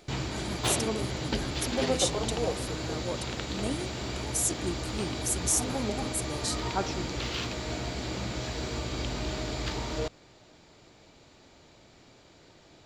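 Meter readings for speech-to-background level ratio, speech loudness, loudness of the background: -0.5 dB, -33.5 LUFS, -33.0 LUFS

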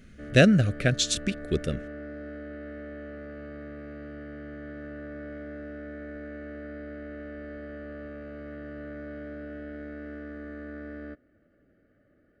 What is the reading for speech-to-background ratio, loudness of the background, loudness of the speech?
17.5 dB, -41.0 LUFS, -23.5 LUFS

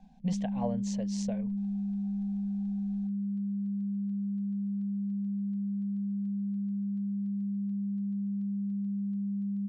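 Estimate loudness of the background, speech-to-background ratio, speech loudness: -33.5 LUFS, -4.5 dB, -38.0 LUFS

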